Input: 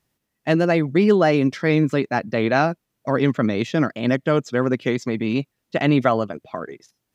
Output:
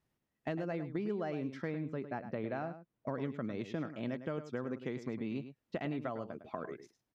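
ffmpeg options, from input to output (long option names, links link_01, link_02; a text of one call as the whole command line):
ffmpeg -i in.wav -filter_complex "[0:a]asettb=1/sr,asplit=3[link_01][link_02][link_03];[link_01]atrim=end=1.704[link_04];[link_02]atrim=start=1.7:end=3.09,asetpts=PTS-STARTPTS,afade=type=in:duration=0.004:curve=qsin,afade=type=out:start_time=1.386:duration=0.004:curve=qsin,aemphasis=mode=reproduction:type=75kf[link_05];[link_03]atrim=start=3.086[link_06];[link_04][link_05]acrossfade=duration=0.004:curve1=hsin:curve2=qsin[link_07];[link_07][link_06]acrossfade=duration=0.004:curve1=qsin:curve2=hsin,acompressor=threshold=-28dB:ratio=6,highshelf=frequency=3100:gain=-9.5,asplit=2[link_08][link_09];[link_09]adelay=105,volume=-11dB,highshelf=frequency=4000:gain=-2.36[link_10];[link_08][link_10]amix=inputs=2:normalize=0,volume=-7dB" out.wav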